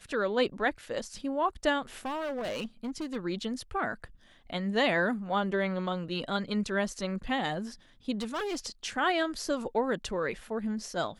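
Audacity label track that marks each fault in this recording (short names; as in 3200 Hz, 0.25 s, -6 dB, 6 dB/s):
2.050000	3.170000	clipped -31 dBFS
8.200000	8.660000	clipped -29.5 dBFS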